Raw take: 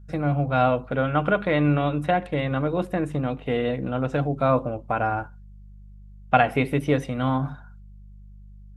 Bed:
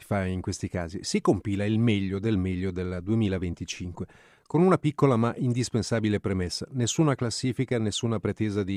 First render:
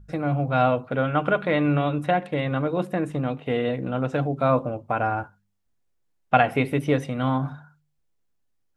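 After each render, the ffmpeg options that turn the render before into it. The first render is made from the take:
-af "bandreject=f=50:t=h:w=4,bandreject=f=100:t=h:w=4,bandreject=f=150:t=h:w=4,bandreject=f=200:t=h:w=4"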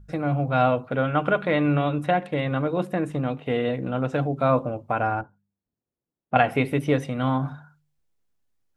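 -filter_complex "[0:a]asettb=1/sr,asplit=3[s0][s1][s2];[s0]atrim=end=5.214[s3];[s1]atrim=start=5.21:end=6.36,asetpts=PTS-STARTPTS,afade=t=in:d=0.004:c=qsin,afade=t=out:st=1.146:d=0.004:c=qsin,bandpass=f=250:t=q:w=0.63[s4];[s2]atrim=start=6.356[s5];[s3][s4]acrossfade=d=0.004:c1=hsin:c2=qsin[s6];[s6][s5]acrossfade=d=0.004:c1=qsin:c2=hsin"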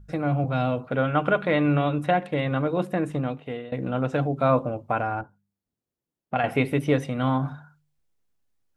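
-filter_complex "[0:a]asettb=1/sr,asplit=3[s0][s1][s2];[s0]atrim=end=0.444[s3];[s1]atrim=start=0.44:end=0.87,asetpts=PTS-STARTPTS,afade=t=in:d=0.004:c=qsin,afade=t=out:st=0.426:d=0.004:c=qsin,acrossover=split=410|3000[s4][s5][s6];[s5]acompressor=threshold=0.0316:ratio=2.5:attack=3.2:release=140:knee=2.83:detection=peak[s7];[s4][s7][s6]amix=inputs=3:normalize=0[s8];[s2]atrim=start=0.866[s9];[s3][s8]acrossfade=d=0.004:c1=hsin:c2=qsin[s10];[s10][s9]acrossfade=d=0.004:c1=qsin:c2=hsin,asettb=1/sr,asplit=3[s11][s12][s13];[s11]atrim=end=5.004[s14];[s12]atrim=start=5:end=6.44,asetpts=PTS-STARTPTS,afade=t=in:d=0.004:c=qsin,afade=t=out:st=1.436:d=0.004:c=qsin,acompressor=threshold=0.0631:ratio=2:attack=3.2:release=140:knee=1:detection=peak[s15];[s13]atrim=start=6.436[s16];[s14][s15]acrossfade=d=0.004:c1=hsin:c2=qsin[s17];[s17][s16]acrossfade=d=0.004:c1=qsin:c2=hsin,asplit=2[s18][s19];[s18]atrim=end=3.72,asetpts=PTS-STARTPTS,afade=t=out:st=3.16:d=0.56:silence=0.0944061[s20];[s19]atrim=start=3.72,asetpts=PTS-STARTPTS,afade=t=in:d=0.004:c=hsin:silence=0.0944061[s21];[s20][s21]concat=n=2:v=0:a=1"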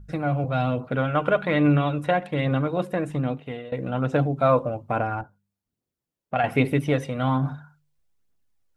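-af "aphaser=in_gain=1:out_gain=1:delay=2.2:decay=0.34:speed=1.2:type=triangular"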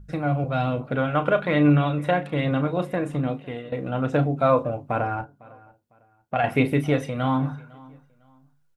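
-filter_complex "[0:a]asplit=2[s0][s1];[s1]adelay=34,volume=0.282[s2];[s0][s2]amix=inputs=2:normalize=0,asplit=2[s3][s4];[s4]adelay=503,lowpass=f=4800:p=1,volume=0.0708,asplit=2[s5][s6];[s6]adelay=503,lowpass=f=4800:p=1,volume=0.29[s7];[s3][s5][s7]amix=inputs=3:normalize=0"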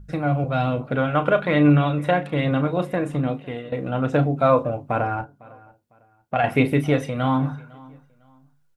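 -af "volume=1.26"

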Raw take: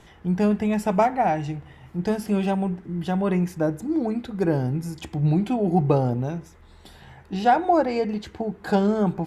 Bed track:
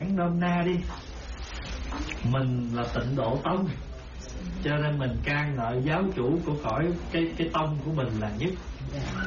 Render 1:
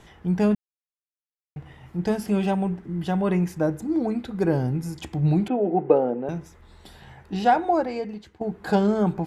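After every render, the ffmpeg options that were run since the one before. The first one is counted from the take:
-filter_complex "[0:a]asettb=1/sr,asplit=3[s0][s1][s2];[s0]atrim=end=5.484[s3];[s1]atrim=start=5.48:end=6.29,asetpts=PTS-STARTPTS,afade=t=in:d=0.004:c=qsin,afade=t=out:st=0.806:d=0.004:c=qsin,highpass=f=230:w=0.5412,highpass=f=230:w=1.3066,equalizer=f=490:t=q:w=4:g=7,equalizer=f=1100:t=q:w=4:g=-5,equalizer=f=2200:t=q:w=4:g=-4,lowpass=f=2600:w=0.5412,lowpass=f=2600:w=1.3066[s4];[s2]atrim=start=6.286[s5];[s3][s4]acrossfade=d=0.004:c1=hsin:c2=qsin[s6];[s6][s5]acrossfade=d=0.004:c1=qsin:c2=hsin,asplit=4[s7][s8][s9][s10];[s7]atrim=end=0.55,asetpts=PTS-STARTPTS,afade=t=out:st=0.546:d=0.004:c=hsin[s11];[s8]atrim=start=0.55:end=1.56,asetpts=PTS-STARTPTS,volume=0[s12];[s9]atrim=start=1.56:end=8.41,asetpts=PTS-STARTPTS,afade=t=in:d=0.004:c=hsin,afade=t=out:st=5.87:d=0.98:silence=0.177828[s13];[s10]atrim=start=8.41,asetpts=PTS-STARTPTS,afade=t=in:d=0.004:c=hsin:silence=0.177828[s14];[s11][s12][s13][s14]concat=n=4:v=0:a=1"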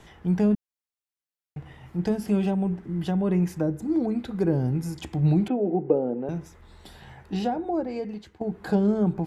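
-filter_complex "[0:a]acrossover=split=490[s0][s1];[s1]acompressor=threshold=0.0158:ratio=6[s2];[s0][s2]amix=inputs=2:normalize=0"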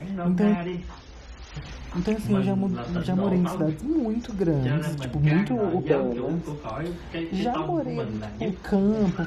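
-filter_complex "[1:a]volume=0.596[s0];[0:a][s0]amix=inputs=2:normalize=0"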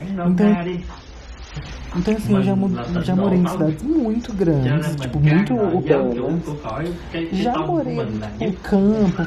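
-af "volume=2"

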